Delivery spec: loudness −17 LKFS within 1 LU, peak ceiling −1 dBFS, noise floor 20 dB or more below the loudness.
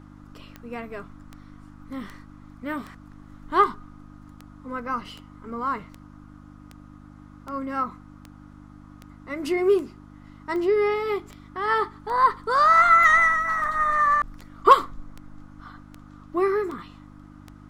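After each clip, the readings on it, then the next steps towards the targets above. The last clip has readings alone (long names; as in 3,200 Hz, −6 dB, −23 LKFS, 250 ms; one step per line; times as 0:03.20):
number of clicks 23; mains hum 50 Hz; hum harmonics up to 300 Hz; level of the hum −44 dBFS; integrated loudness −22.0 LKFS; sample peak −4.5 dBFS; target loudness −17.0 LKFS
→ click removal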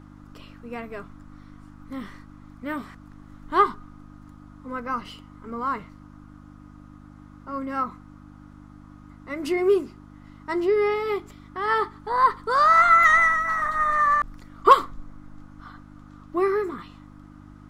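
number of clicks 0; mains hum 50 Hz; hum harmonics up to 300 Hz; level of the hum −44 dBFS
→ hum removal 50 Hz, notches 6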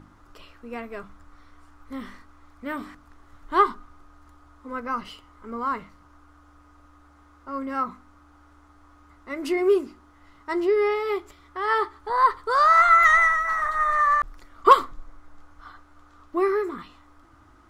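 mains hum none found; integrated loudness −22.0 LKFS; sample peak −4.5 dBFS; target loudness −17.0 LKFS
→ level +5 dB
brickwall limiter −1 dBFS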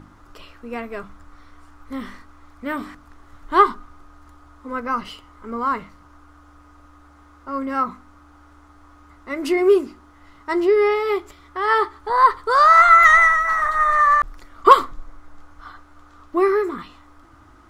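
integrated loudness −17.0 LKFS; sample peak −1.0 dBFS; background noise floor −50 dBFS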